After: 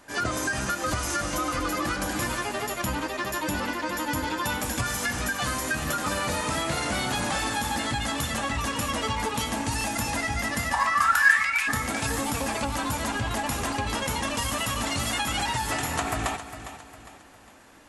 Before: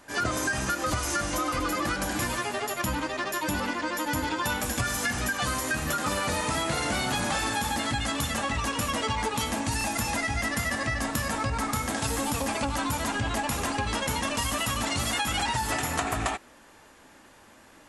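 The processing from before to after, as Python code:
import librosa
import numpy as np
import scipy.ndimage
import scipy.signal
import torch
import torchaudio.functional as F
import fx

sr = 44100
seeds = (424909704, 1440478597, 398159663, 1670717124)

p1 = fx.highpass_res(x, sr, hz=fx.line((10.72, 860.0), (11.67, 2600.0)), q=15.0, at=(10.72, 11.67), fade=0.02)
y = p1 + fx.echo_feedback(p1, sr, ms=406, feedback_pct=41, wet_db=-12.0, dry=0)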